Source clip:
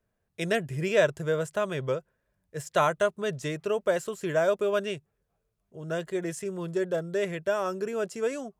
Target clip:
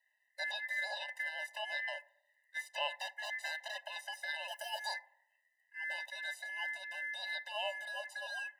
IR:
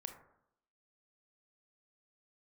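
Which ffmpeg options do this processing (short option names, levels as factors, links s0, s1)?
-filter_complex "[0:a]acrossover=split=2900[s0][s1];[s1]acompressor=threshold=0.00282:ratio=4:attack=1:release=60[s2];[s0][s2]amix=inputs=2:normalize=0,asettb=1/sr,asplit=3[s3][s4][s5];[s3]atrim=end=4.484[s6];[s4]atrim=start=4.48:end=4.94,asetpts=PTS-STARTPTS,afade=t=in:d=0.004:c=qsin,afade=t=out:st=0.456:d=0.004:c=qsin,aemphasis=mode=production:type=75fm[s7];[s5]atrim=start=4.936[s8];[s6][s7]acrossfade=d=0.004:c1=hsin:c2=qsin[s9];[s9][s8]acrossfade=d=0.004:c1=qsin:c2=hsin,acrossover=split=350|3000[s10][s11][s12];[s10]acompressor=threshold=0.01:ratio=2.5[s13];[s13][s11][s12]amix=inputs=3:normalize=0,alimiter=limit=0.0708:level=0:latency=1:release=94,asettb=1/sr,asplit=3[s14][s15][s16];[s14]atrim=end=2.974[s17];[s15]atrim=start=2.97:end=3.83,asetpts=PTS-STARTPTS,afade=t=in:d=0.004:c=qsin,afade=t=out:st=0.856:d=0.004:c=qsin,aeval=exprs='0.0266*(abs(mod(val(0)/0.0266+3,4)-2)-1)':c=same[s18];[s16]atrim=start=3.826[s19];[s17][s18]acrossfade=d=0.004:c1=hsin:c2=qsin[s20];[s20][s19]acrossfade=d=0.004:c1=qsin:c2=hsin,aeval=exprs='val(0)*sin(2*PI*1900*n/s)':c=same,asplit=2[s21][s22];[1:a]atrim=start_sample=2205[s23];[s22][s23]afir=irnorm=-1:irlink=0,volume=0.398[s24];[s21][s24]amix=inputs=2:normalize=0,afftfilt=real='re*eq(mod(floor(b*sr/1024/520),2),1)':imag='im*eq(mod(floor(b*sr/1024/520),2),1)':win_size=1024:overlap=0.75,volume=1.33"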